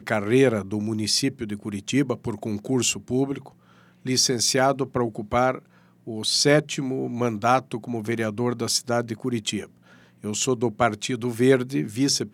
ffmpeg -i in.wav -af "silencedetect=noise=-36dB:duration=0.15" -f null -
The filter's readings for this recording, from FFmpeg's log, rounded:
silence_start: 3.48
silence_end: 4.05 | silence_duration: 0.58
silence_start: 5.59
silence_end: 6.07 | silence_duration: 0.48
silence_start: 9.65
silence_end: 10.24 | silence_duration: 0.58